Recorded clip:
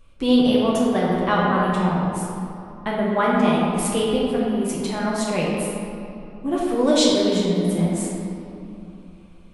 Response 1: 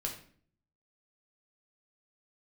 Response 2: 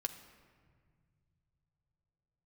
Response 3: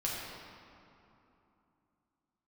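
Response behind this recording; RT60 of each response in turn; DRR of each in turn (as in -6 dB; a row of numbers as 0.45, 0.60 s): 3; 0.50, 1.9, 3.0 s; 0.0, 5.5, -5.5 dB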